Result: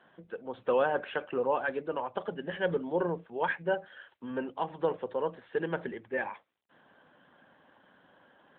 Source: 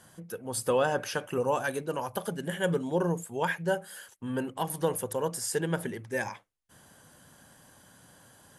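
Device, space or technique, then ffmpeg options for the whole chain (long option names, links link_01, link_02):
telephone: -af "highpass=260,lowpass=3300" -ar 8000 -c:a libopencore_amrnb -b:a 12200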